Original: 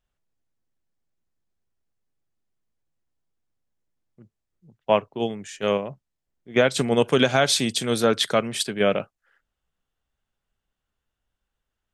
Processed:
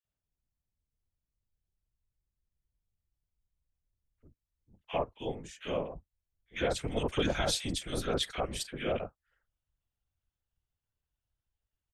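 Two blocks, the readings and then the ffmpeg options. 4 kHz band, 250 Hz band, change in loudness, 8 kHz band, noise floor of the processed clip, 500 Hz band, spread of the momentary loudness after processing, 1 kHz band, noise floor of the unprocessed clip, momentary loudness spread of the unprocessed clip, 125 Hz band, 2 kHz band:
-10.5 dB, -12.0 dB, -11.5 dB, -10.5 dB, under -85 dBFS, -12.5 dB, 11 LU, -11.0 dB, -83 dBFS, 10 LU, -8.5 dB, -12.5 dB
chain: -filter_complex "[0:a]afftfilt=real='hypot(re,im)*cos(2*PI*random(0))':imag='hypot(re,im)*sin(2*PI*random(1))':win_size=512:overlap=0.75,asubboost=boost=3:cutoff=94,acrossover=split=1400[a][b];[a]adelay=50[c];[c][b]amix=inputs=2:normalize=0,volume=-4.5dB"

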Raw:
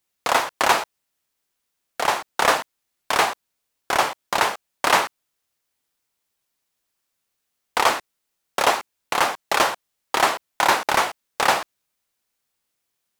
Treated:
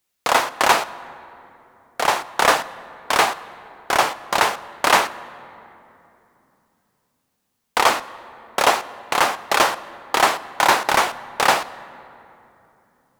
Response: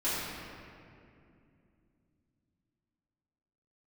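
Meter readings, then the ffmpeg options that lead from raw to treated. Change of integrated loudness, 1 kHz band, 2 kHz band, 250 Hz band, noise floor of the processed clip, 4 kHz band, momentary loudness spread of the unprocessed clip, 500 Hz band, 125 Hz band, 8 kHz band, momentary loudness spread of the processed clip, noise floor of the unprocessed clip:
+2.5 dB, +2.5 dB, +2.5 dB, +2.5 dB, -73 dBFS, +2.5 dB, 10 LU, +2.5 dB, +2.5 dB, +2.5 dB, 15 LU, -78 dBFS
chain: -filter_complex "[0:a]asplit=2[a][b];[1:a]atrim=start_sample=2205,asetrate=34398,aresample=44100[c];[b][c]afir=irnorm=-1:irlink=0,volume=-26dB[d];[a][d]amix=inputs=2:normalize=0,volume=2dB"

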